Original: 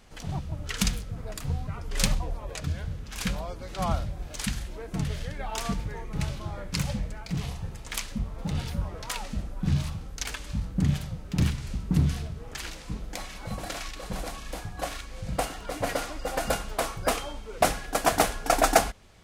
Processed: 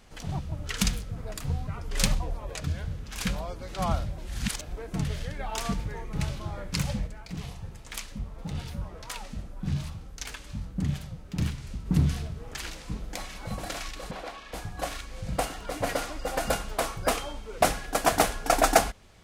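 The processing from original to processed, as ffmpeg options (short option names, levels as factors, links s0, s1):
-filter_complex "[0:a]asplit=3[s0][s1][s2];[s0]afade=t=out:st=7.06:d=0.02[s3];[s1]flanger=delay=2:depth=8.8:regen=-78:speed=1.1:shape=triangular,afade=t=in:st=7.06:d=0.02,afade=t=out:st=11.85:d=0.02[s4];[s2]afade=t=in:st=11.85:d=0.02[s5];[s3][s4][s5]amix=inputs=3:normalize=0,asettb=1/sr,asplit=3[s6][s7][s8];[s6]atrim=end=14.114[s9];[s7]atrim=start=14.11:end=14.54,asetpts=PTS-STARTPTS,afade=t=in:d=0.004:c=qsin,afade=t=out:st=0.426:d=0.004:c=qsin,acrossover=split=310 4600:gain=0.2 1 0.158[s10][s11][s12];[s10][s11][s12]amix=inputs=3:normalize=0[s13];[s8]atrim=start=14.536[s14];[s9][s13]acrossfade=d=0.004:c1=hsin:c2=qsin[s15];[s15][s14]acrossfade=d=0.004:c1=qsin:c2=hsin,asplit=3[s16][s17][s18];[s16]atrim=end=4.182[s19];[s17]atrim=start=4.178:end=4.772,asetpts=PTS-STARTPTS,areverse[s20];[s18]atrim=start=4.768[s21];[s19][s20]acrossfade=d=0.004:c1=hsin:c2=hsin[s22];[s22][s21]acrossfade=d=0.004:c1=hsin:c2=hsin"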